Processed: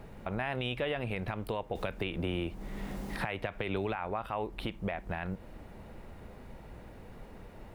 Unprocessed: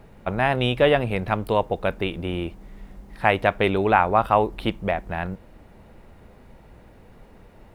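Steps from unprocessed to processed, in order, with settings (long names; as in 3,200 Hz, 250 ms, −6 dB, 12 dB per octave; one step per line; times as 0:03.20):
dynamic equaliser 2,400 Hz, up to +5 dB, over −36 dBFS, Q 1
downward compressor 3 to 1, threshold −31 dBFS, peak gain reduction 15 dB
brickwall limiter −23.5 dBFS, peak gain reduction 10.5 dB
0:01.75–0:03.96: multiband upward and downward compressor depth 70%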